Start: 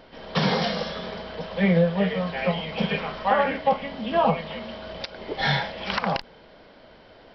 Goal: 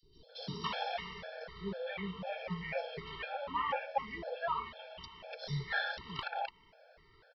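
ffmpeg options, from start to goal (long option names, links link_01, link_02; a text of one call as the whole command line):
ffmpeg -i in.wav -filter_complex "[0:a]afftfilt=real='re*pow(10,7/40*sin(2*PI*(0.59*log(max(b,1)*sr/1024/100)/log(2)-(-0.71)*(pts-256)/sr)))':imag='im*pow(10,7/40*sin(2*PI*(0.59*log(max(b,1)*sr/1024/100)/log(2)-(-0.71)*(pts-256)/sr)))':win_size=1024:overlap=0.75,equalizer=frequency=240:width_type=o:width=0.87:gain=-14,acrossover=split=530|4000[link_01][link_02][link_03];[link_01]adelay=30[link_04];[link_02]adelay=290[link_05];[link_04][link_05][link_03]amix=inputs=3:normalize=0,afftfilt=real='re*gt(sin(2*PI*2*pts/sr)*(1-2*mod(floor(b*sr/1024/450),2)),0)':imag='im*gt(sin(2*PI*2*pts/sr)*(1-2*mod(floor(b*sr/1024/450),2)),0)':win_size=1024:overlap=0.75,volume=-7.5dB" out.wav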